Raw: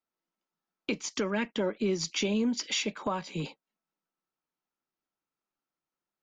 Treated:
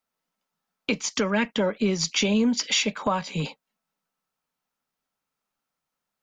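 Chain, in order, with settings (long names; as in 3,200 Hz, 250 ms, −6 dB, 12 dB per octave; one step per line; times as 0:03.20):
parametric band 340 Hz −13 dB 0.29 octaves
level +7.5 dB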